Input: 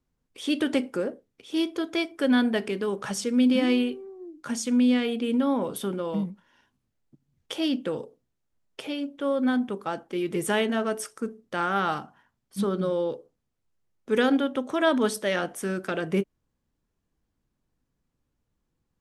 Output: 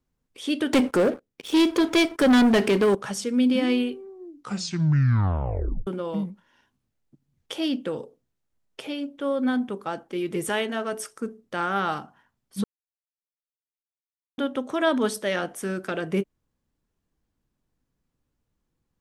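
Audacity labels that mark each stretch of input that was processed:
0.730000	2.950000	leveller curve on the samples passes 3
4.290000	4.290000	tape stop 1.58 s
10.490000	10.930000	low-shelf EQ 270 Hz −8.5 dB
12.640000	14.380000	silence

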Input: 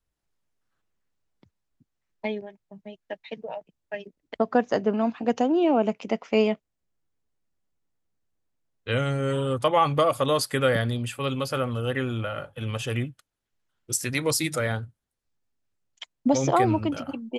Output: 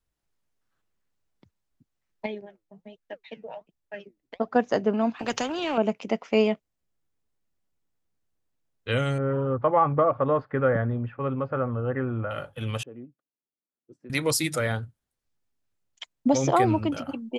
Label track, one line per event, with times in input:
2.260000	4.560000	flanger 1.3 Hz, delay 0.5 ms, depth 9.6 ms, regen +73%
5.190000	5.780000	every bin compressed towards the loudest bin 2 to 1
9.180000	12.310000	low-pass filter 1,600 Hz 24 dB per octave
12.830000	14.100000	four-pole ladder band-pass 340 Hz, resonance 25%

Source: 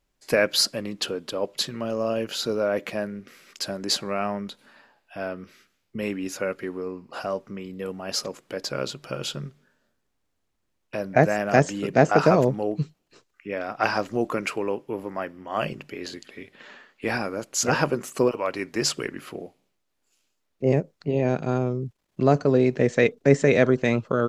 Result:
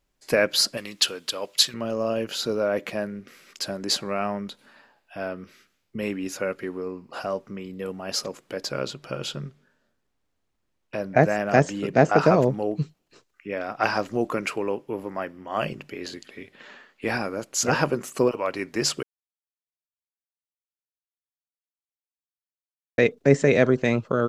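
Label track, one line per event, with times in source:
0.770000	1.740000	tilt shelving filter lows −9 dB, about 1,100 Hz
8.790000	12.500000	high-shelf EQ 7,600 Hz −6 dB
19.030000	22.980000	silence

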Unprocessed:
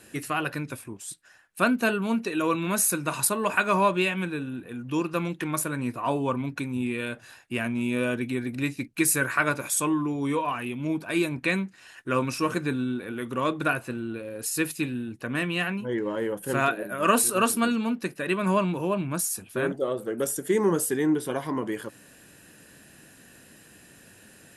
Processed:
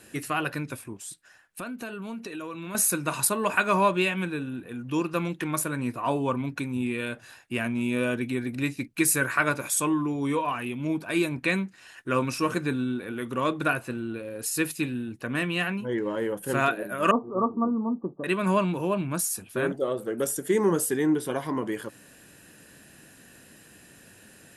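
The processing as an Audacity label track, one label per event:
0.970000	2.750000	downward compressor 5 to 1, threshold −34 dBFS
17.110000	18.240000	Chebyshev low-pass with heavy ripple 1,200 Hz, ripple 3 dB

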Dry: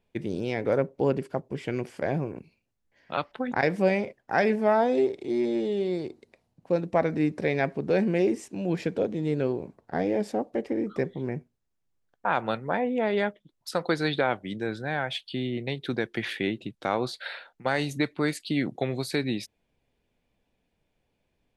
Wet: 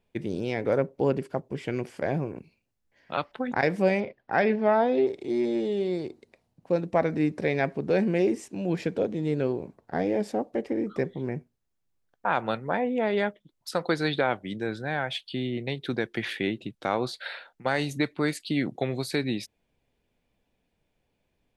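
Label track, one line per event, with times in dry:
4.000000	5.070000	low-pass filter 4,500 Hz 24 dB per octave

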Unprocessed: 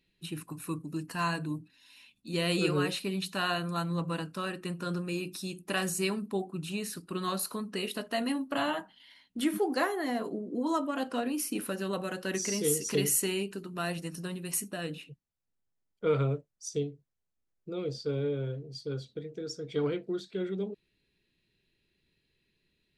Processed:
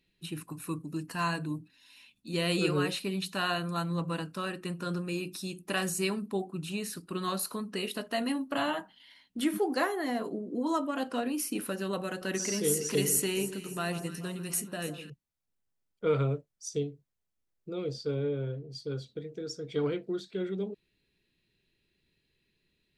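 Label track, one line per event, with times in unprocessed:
12.070000	15.100000	delay that swaps between a low-pass and a high-pass 144 ms, split 1,300 Hz, feedback 68%, level −10.5 dB
18.140000	18.700000	high-shelf EQ 5,900 Hz −11.5 dB

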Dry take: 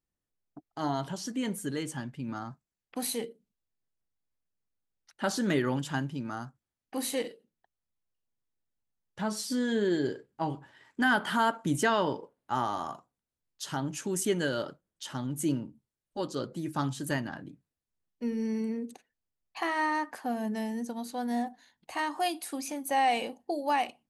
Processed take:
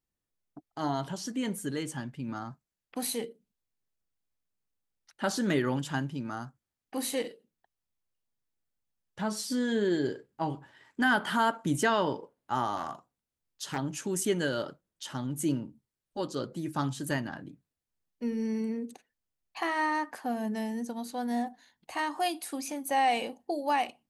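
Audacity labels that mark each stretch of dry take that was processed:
12.770000	13.780000	highs frequency-modulated by the lows depth 0.42 ms

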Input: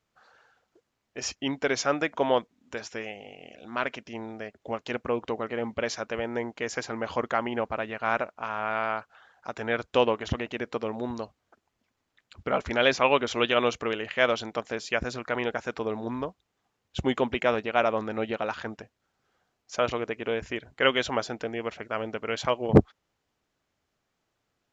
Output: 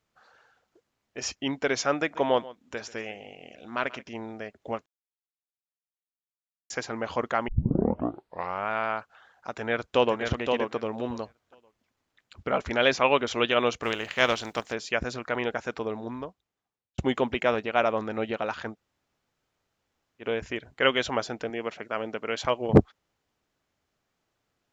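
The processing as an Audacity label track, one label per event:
1.970000	4.090000	single-tap delay 137 ms −19 dB
4.860000	6.700000	silence
7.480000	7.480000	tape start 1.21 s
9.500000	10.190000	delay throw 520 ms, feedback 15%, level −4.5 dB
13.820000	14.720000	compressing power law on the bin magnitudes exponent 0.67
15.710000	16.980000	fade out
18.740000	20.230000	fill with room tone, crossfade 0.10 s
21.500000	22.450000	high-pass filter 140 Hz

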